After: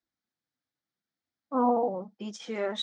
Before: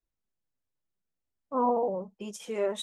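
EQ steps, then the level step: speaker cabinet 170–5200 Hz, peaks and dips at 180 Hz -6 dB, 410 Hz -10 dB, 580 Hz -8 dB, 1000 Hz -8 dB, 2700 Hz -10 dB; +7.0 dB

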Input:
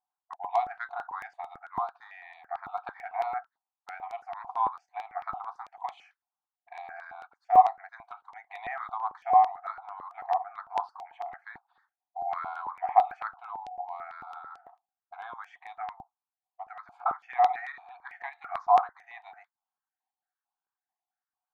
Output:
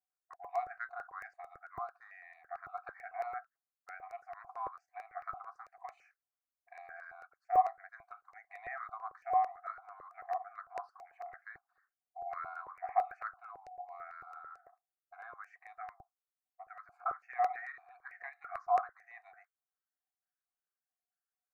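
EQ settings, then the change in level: fixed phaser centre 900 Hz, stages 6; -4.0 dB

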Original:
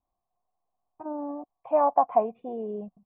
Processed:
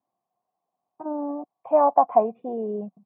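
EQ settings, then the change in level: HPF 140 Hz 24 dB/oct; high shelf 2200 Hz -11.5 dB; +5.0 dB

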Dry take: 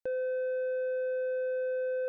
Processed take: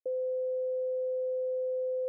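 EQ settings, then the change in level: Chebyshev band-pass 160–680 Hz, order 5; fixed phaser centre 490 Hz, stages 4; 0.0 dB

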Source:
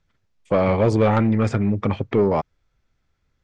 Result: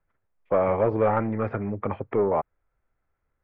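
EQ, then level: air absorption 350 m; three-band isolator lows -12 dB, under 390 Hz, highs -23 dB, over 2300 Hz; low shelf 63 Hz +6.5 dB; 0.0 dB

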